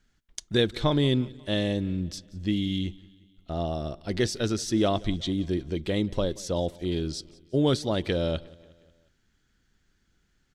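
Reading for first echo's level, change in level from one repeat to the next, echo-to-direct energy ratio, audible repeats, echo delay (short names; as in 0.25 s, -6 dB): -23.0 dB, -5.5 dB, -21.5 dB, 3, 0.18 s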